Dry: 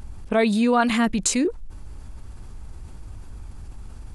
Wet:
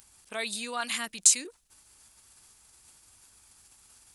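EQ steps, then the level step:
first difference
low-shelf EQ 130 Hz +5 dB
+4.0 dB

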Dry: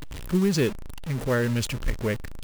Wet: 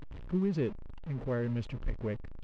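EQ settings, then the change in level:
dynamic equaliser 1,500 Hz, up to −4 dB, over −47 dBFS, Q 3.4
head-to-tape spacing loss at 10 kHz 35 dB
−7.0 dB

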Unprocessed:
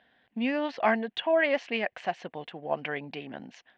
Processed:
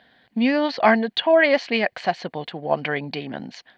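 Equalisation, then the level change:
parametric band 140 Hz +3.5 dB 1.4 octaves
parametric band 4,400 Hz +12 dB 0.31 octaves
notch filter 2,700 Hz, Q 14
+8.0 dB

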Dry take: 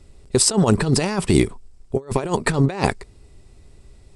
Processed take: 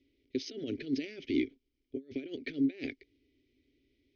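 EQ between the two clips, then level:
formant filter i
linear-phase brick-wall low-pass 6,600 Hz
phaser with its sweep stopped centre 460 Hz, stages 4
0.0 dB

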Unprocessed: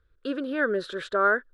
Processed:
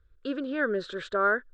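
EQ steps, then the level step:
Chebyshev low-pass filter 7,700 Hz, order 4
low-shelf EQ 130 Hz +8.5 dB
−2.0 dB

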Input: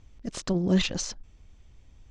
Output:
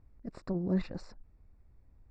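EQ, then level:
moving average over 14 samples
−7.0 dB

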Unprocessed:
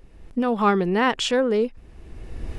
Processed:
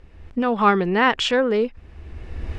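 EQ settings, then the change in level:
high-frequency loss of the air 59 metres
parametric band 78 Hz +11 dB 0.38 octaves
parametric band 1,900 Hz +5.5 dB 2.5 octaves
0.0 dB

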